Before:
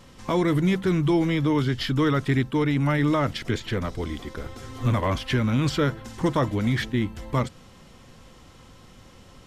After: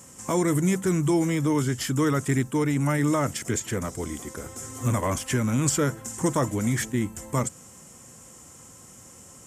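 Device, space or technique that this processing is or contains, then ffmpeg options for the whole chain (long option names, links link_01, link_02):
budget condenser microphone: -af "highpass=89,highshelf=frequency=5500:width_type=q:width=3:gain=12,volume=-1dB"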